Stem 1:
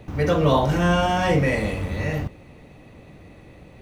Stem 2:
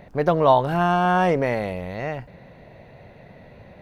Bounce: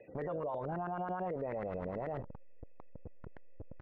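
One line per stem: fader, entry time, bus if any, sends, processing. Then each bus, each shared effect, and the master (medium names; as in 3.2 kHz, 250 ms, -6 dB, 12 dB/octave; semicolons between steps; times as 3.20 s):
+2.0 dB, 0.00 s, no send, spectral gate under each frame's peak -25 dB strong; vowel filter e; auto duck -20 dB, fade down 1.00 s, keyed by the second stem
-6.0 dB, 0.7 ms, no send, send-on-delta sampling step -32.5 dBFS; compression 2:1, threshold -23 dBFS, peak gain reduction 7 dB; LFO low-pass saw up 9.2 Hz 380–1700 Hz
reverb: none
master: peak limiter -31 dBFS, peak gain reduction 18.5 dB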